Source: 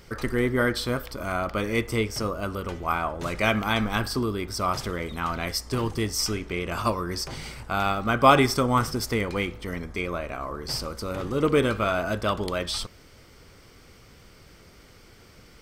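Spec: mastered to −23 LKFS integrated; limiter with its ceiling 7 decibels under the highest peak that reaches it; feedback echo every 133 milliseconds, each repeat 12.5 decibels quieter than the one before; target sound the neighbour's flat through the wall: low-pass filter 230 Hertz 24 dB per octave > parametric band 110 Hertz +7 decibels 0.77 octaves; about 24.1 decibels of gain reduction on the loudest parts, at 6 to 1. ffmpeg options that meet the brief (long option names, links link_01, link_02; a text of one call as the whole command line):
ffmpeg -i in.wav -af "acompressor=threshold=-38dB:ratio=6,alimiter=level_in=7.5dB:limit=-24dB:level=0:latency=1,volume=-7.5dB,lowpass=frequency=230:width=0.5412,lowpass=frequency=230:width=1.3066,equalizer=frequency=110:width_type=o:width=0.77:gain=7,aecho=1:1:133|266|399:0.237|0.0569|0.0137,volume=22.5dB" out.wav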